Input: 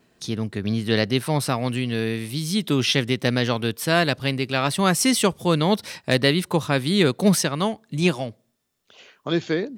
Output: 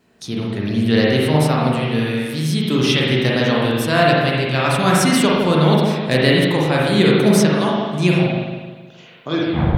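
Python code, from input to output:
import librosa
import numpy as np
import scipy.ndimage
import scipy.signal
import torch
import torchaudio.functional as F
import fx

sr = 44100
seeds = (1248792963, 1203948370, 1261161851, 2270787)

y = fx.tape_stop_end(x, sr, length_s=0.43)
y = fx.rev_spring(y, sr, rt60_s=1.5, pass_ms=(39, 52), chirp_ms=45, drr_db=-4.5)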